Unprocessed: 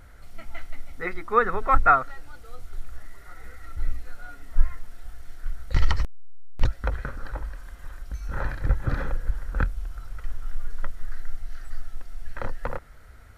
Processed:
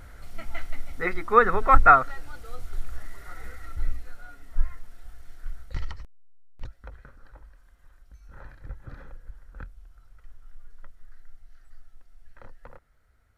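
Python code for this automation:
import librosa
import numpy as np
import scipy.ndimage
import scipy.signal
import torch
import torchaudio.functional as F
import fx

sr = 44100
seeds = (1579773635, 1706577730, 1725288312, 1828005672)

y = fx.gain(x, sr, db=fx.line((3.42, 3.0), (4.3, -4.5), (5.58, -4.5), (5.98, -16.5)))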